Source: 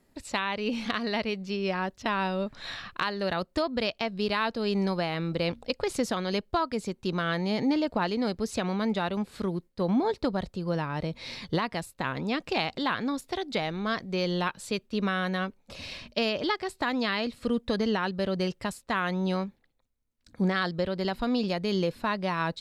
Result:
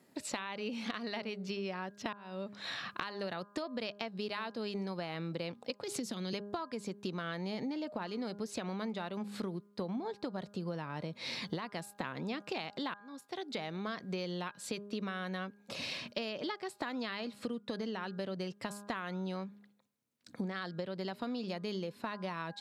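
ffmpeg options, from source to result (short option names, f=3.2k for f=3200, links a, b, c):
-filter_complex "[0:a]asettb=1/sr,asplit=3[a][b][c];[a]atrim=end=5.834[d];[b]atrim=start=5.83:end=6.33,asetpts=PTS-STARTPTS,afade=t=in:d=0.004:c=qsin,afade=t=out:st=0.496:d=0.004:c=qsin,acrossover=split=340|3000[e][f][g];[f]acompressor=threshold=-41dB:ratio=6:attack=3.2:release=140:knee=2.83:detection=peak[h];[e][h][g]amix=inputs=3:normalize=0[i];[c]atrim=start=6.326[j];[d][i]acrossfade=d=0.004:c1=hsin:c2=qsin[k];[k][j]acrossfade=d=0.004:c1=qsin:c2=hsin,asplit=3[l][m][n];[l]atrim=end=2.13,asetpts=PTS-STARTPTS,afade=t=out:st=2.126:d=0.004:c=hsin[o];[m]atrim=start=2.13:end=12.94,asetpts=PTS-STARTPTS,afade=t=in:d=0.9,afade=t=out:st=10.806:d=0.004:c=hsin[p];[n]atrim=start=12.94,asetpts=PTS-STARTPTS,afade=t=in:d=1.35[q];[o][p][q]concat=n=3:v=0:a=1,highpass=f=130:w=0.5412,highpass=f=130:w=1.3066,bandreject=f=203.8:t=h:w=4,bandreject=f=407.6:t=h:w=4,bandreject=f=611.4:t=h:w=4,bandreject=f=815.2:t=h:w=4,bandreject=f=1.019k:t=h:w=4,bandreject=f=1.2228k:t=h:w=4,bandreject=f=1.4266k:t=h:w=4,bandreject=f=1.6304k:t=h:w=4,acompressor=threshold=-37dB:ratio=12,volume=2dB"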